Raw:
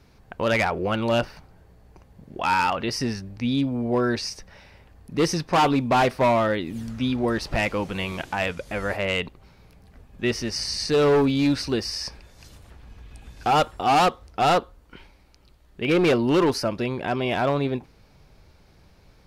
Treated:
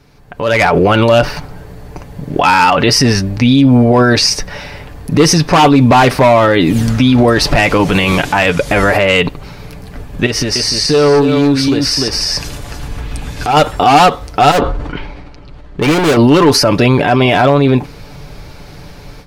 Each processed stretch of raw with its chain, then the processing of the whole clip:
10.26–13.57 echo 0.296 s -6.5 dB + compressor, threshold -33 dBFS
14.51–16.17 tape spacing loss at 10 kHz 23 dB + overloaded stage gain 31.5 dB + sustainer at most 34 dB/s
whole clip: comb 6.9 ms, depth 43%; limiter -23 dBFS; AGC gain up to 14.5 dB; gain +7 dB

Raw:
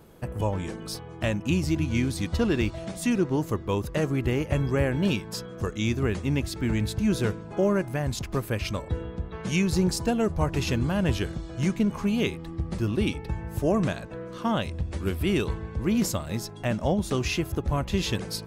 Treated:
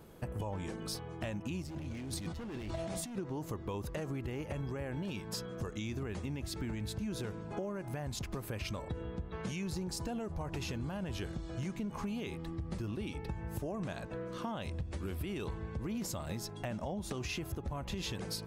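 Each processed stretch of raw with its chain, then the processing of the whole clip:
1.62–3.18 hard clip -25.5 dBFS + negative-ratio compressor -36 dBFS
whole clip: dynamic EQ 820 Hz, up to +4 dB, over -42 dBFS, Q 2.2; limiter -20.5 dBFS; compressor, threshold -32 dBFS; gain -3 dB

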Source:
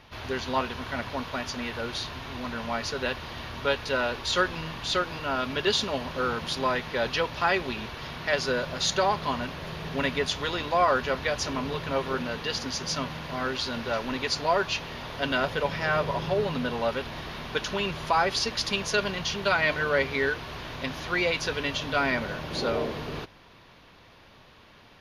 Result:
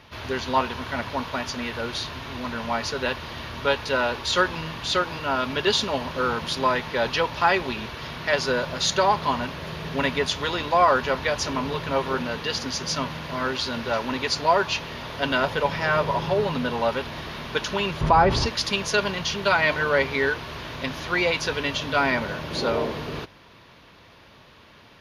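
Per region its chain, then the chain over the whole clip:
18.01–18.46 tilt -3.5 dB/oct + fast leveller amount 50%
whole clip: HPF 46 Hz; notch 760 Hz, Q 17; dynamic EQ 890 Hz, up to +5 dB, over -41 dBFS, Q 3.3; gain +3 dB

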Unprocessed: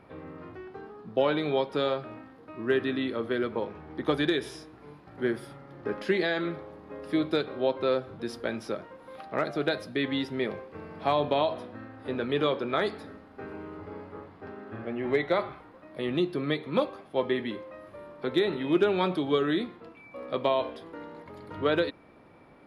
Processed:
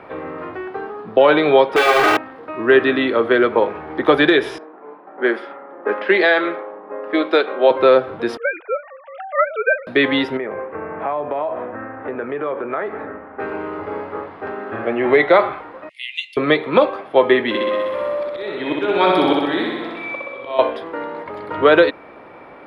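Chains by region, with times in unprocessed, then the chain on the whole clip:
1.76–2.17 infinite clipping + tone controls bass -9 dB, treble -2 dB + comb 2.6 ms, depth 83%
4.58–7.71 low-pass opened by the level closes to 890 Hz, open at -22.5 dBFS + elliptic high-pass 190 Hz, stop band 50 dB + low shelf 300 Hz -9.5 dB
8.37–9.87 sine-wave speech + HPF 1200 Hz 6 dB/oct
10.37–13.4 LPF 2100 Hz 24 dB/oct + compressor 4:1, threshold -37 dBFS
15.89–16.37 rippled Chebyshev high-pass 2000 Hz, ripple 9 dB + high shelf 3500 Hz +10.5 dB + careless resampling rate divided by 2×, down none, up filtered
17.48–20.59 auto swell 0.627 s + high shelf 3400 Hz +8 dB + flutter echo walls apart 10.8 m, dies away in 1.4 s
whole clip: three-band isolator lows -13 dB, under 350 Hz, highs -16 dB, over 3200 Hz; maximiser +18.5 dB; gain -1 dB

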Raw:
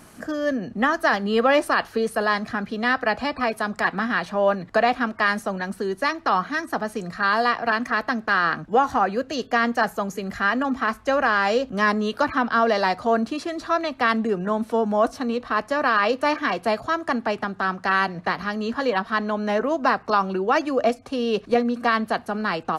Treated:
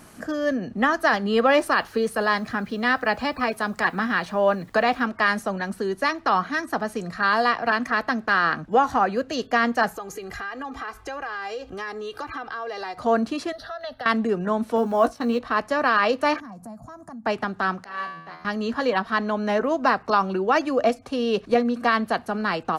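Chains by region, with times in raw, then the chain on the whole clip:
1.5–5.06 notch 690 Hz, Q 16 + requantised 10-bit, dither none
9.95–12.98 bell 240 Hz -8 dB 0.35 oct + comb 2.5 ms, depth 61% + compressor 4:1, threshold -31 dBFS
13.52–14.06 compressor 10:1, threshold -26 dBFS + fixed phaser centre 1600 Hz, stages 8
14.76–15.39 gate -38 dBFS, range -12 dB + companded quantiser 8-bit + doubler 17 ms -8.5 dB
16.4–17.26 EQ curve 110 Hz 0 dB, 210 Hz +6 dB, 400 Hz -19 dB, 710 Hz -6 dB, 1100 Hz -10 dB, 3100 Hz -29 dB, 7000 Hz -3 dB + compressor 4:1, threshold -38 dBFS
17.84–18.45 resonator 82 Hz, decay 1.2 s, mix 90% + three-band expander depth 70%
whole clip: dry

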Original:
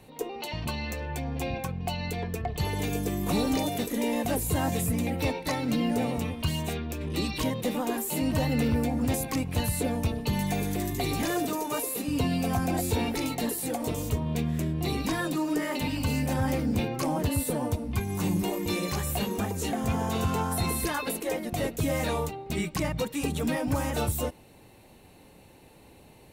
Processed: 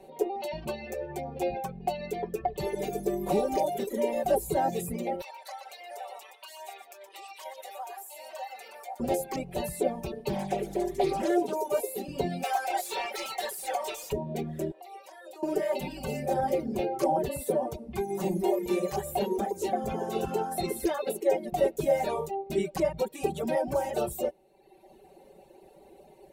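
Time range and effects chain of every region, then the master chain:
5.21–9 HPF 800 Hz 24 dB/oct + echo 0.121 s -9 dB + compressor 3:1, threshold -37 dBFS
10.29–11.56 LPF 11000 Hz + Doppler distortion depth 0.47 ms
12.43–14.12 HPF 1100 Hz + overdrive pedal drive 21 dB, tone 5000 Hz, clips at -20.5 dBFS
14.71–15.43 HPF 500 Hz 24 dB/oct + compressor 8:1, threshold -43 dBFS
whole clip: reverb removal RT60 1.1 s; band shelf 510 Hz +12.5 dB; comb 5.2 ms, depth 94%; gain -8.5 dB

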